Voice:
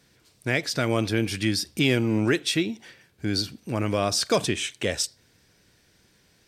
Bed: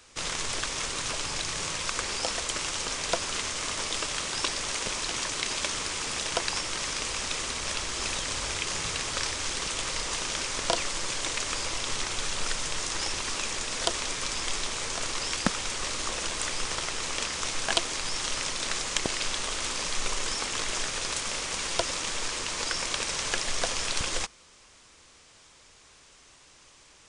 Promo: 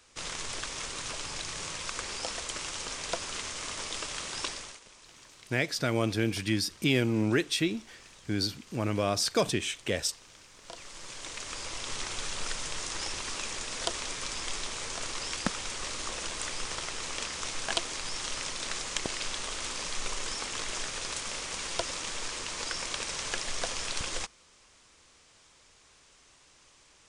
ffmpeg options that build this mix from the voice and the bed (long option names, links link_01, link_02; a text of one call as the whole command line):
ffmpeg -i stem1.wav -i stem2.wav -filter_complex "[0:a]adelay=5050,volume=-4dB[link_01];[1:a]volume=13dB,afade=type=out:start_time=4.46:duration=0.34:silence=0.133352,afade=type=in:start_time=10.6:duration=1.47:silence=0.11885[link_02];[link_01][link_02]amix=inputs=2:normalize=0" out.wav